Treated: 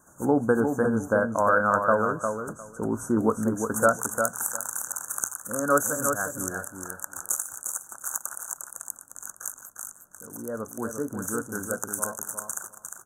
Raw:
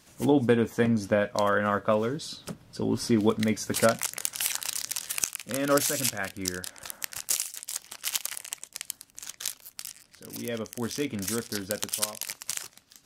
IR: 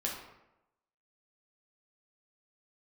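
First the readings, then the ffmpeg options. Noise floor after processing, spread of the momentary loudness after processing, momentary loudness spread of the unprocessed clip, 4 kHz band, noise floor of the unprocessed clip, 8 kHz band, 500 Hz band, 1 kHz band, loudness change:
-54 dBFS, 14 LU, 13 LU, under -25 dB, -60 dBFS, +1.0 dB, +1.5 dB, +6.0 dB, +1.5 dB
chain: -filter_complex "[0:a]asuperstop=centerf=3200:order=20:qfactor=0.67,equalizer=f=2.2k:t=o:w=2.4:g=10.5,bandreject=f=60:t=h:w=6,bandreject=f=120:t=h:w=6,asplit=2[a][b];[b]aecho=0:1:353|706|1059:0.501|0.0802|0.0128[c];[a][c]amix=inputs=2:normalize=0,volume=-1.5dB"

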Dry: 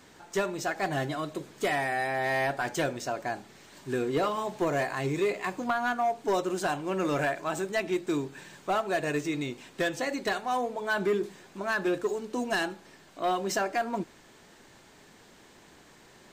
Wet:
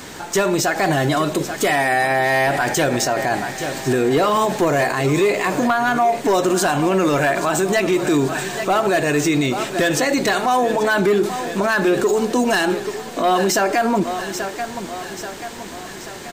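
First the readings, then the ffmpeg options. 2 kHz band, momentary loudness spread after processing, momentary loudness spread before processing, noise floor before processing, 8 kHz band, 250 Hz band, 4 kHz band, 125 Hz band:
+11.5 dB, 9 LU, 7 LU, -56 dBFS, +16.5 dB, +13.0 dB, +13.5 dB, +13.5 dB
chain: -filter_complex "[0:a]highshelf=f=7.2k:g=5.5,asplit=2[a][b];[b]aecho=0:1:833|1666|2499|3332|4165:0.141|0.0749|0.0397|0.021|0.0111[c];[a][c]amix=inputs=2:normalize=0,alimiter=level_in=28dB:limit=-1dB:release=50:level=0:latency=1,volume=-9dB"

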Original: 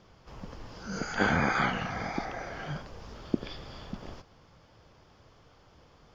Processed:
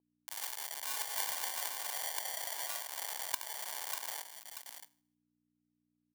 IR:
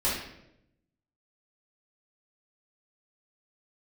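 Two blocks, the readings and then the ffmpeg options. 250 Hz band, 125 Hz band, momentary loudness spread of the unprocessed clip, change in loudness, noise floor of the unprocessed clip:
-33.5 dB, under -40 dB, 20 LU, -5.0 dB, -60 dBFS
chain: -filter_complex "[0:a]acrusher=bits=6:mix=0:aa=0.000001,asplit=2[a][b];[1:a]atrim=start_sample=2205,asetrate=74970,aresample=44100,adelay=21[c];[b][c]afir=irnorm=-1:irlink=0,volume=-25dB[d];[a][d]amix=inputs=2:normalize=0,dynaudnorm=f=330:g=9:m=11.5dB,aecho=1:1:71|635:0.237|0.119,acrusher=samples=34:mix=1:aa=0.000001,crystalizer=i=8.5:c=0,tiltshelf=f=1.2k:g=-3.5,aeval=exprs='val(0)+0.00708*(sin(2*PI*60*n/s)+sin(2*PI*2*60*n/s)/2+sin(2*PI*3*60*n/s)/3+sin(2*PI*4*60*n/s)/4+sin(2*PI*5*60*n/s)/5)':c=same,highpass=f=860:t=q:w=2,acompressor=threshold=-21dB:ratio=6,adynamicequalizer=threshold=0.01:dfrequency=1600:dqfactor=0.7:tfrequency=1600:tqfactor=0.7:attack=5:release=100:ratio=0.375:range=2:mode=cutabove:tftype=highshelf,volume=-7.5dB"

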